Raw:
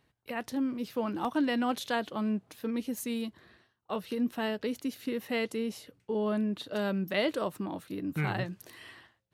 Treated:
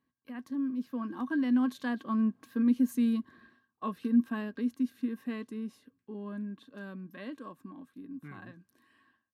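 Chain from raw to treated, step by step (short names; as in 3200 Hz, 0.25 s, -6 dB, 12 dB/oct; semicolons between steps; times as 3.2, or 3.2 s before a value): Doppler pass-by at 3.06, 13 m/s, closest 14 m; small resonant body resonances 250/1100/1600 Hz, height 18 dB, ringing for 55 ms; gain -7.5 dB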